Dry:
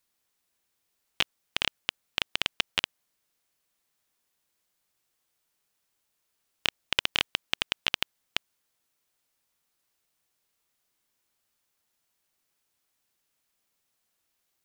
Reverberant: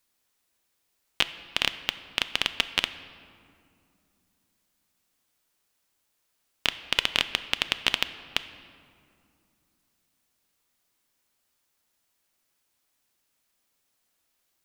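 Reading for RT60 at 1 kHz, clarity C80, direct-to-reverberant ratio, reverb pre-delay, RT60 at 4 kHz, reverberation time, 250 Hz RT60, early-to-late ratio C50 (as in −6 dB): 2.3 s, 14.0 dB, 11.0 dB, 3 ms, 1.3 s, 2.4 s, 3.5 s, 13.0 dB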